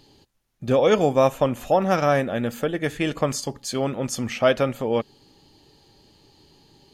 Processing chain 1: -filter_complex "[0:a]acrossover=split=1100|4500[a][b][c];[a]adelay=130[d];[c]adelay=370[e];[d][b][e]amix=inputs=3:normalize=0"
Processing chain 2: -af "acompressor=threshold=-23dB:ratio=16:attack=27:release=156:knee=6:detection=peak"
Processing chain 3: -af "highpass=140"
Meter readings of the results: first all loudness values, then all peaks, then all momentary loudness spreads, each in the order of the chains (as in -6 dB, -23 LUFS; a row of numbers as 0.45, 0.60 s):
-23.5, -27.5, -23.0 LUFS; -8.0, -9.5, -5.0 dBFS; 8, 4, 9 LU